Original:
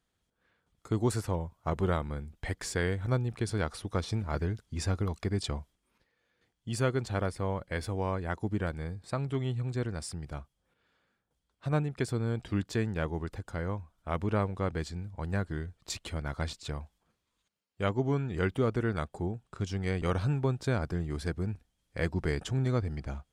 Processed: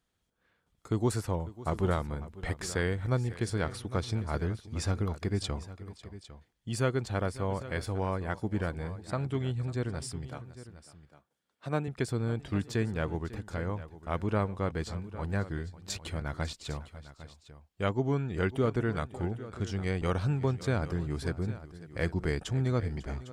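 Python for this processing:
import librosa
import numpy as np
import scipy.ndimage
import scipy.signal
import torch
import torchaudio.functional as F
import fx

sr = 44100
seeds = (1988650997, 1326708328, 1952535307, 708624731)

y = fx.highpass(x, sr, hz=180.0, slope=12, at=(10.29, 11.88))
y = fx.echo_multitap(y, sr, ms=(548, 804), db=(-17.5, -15.5))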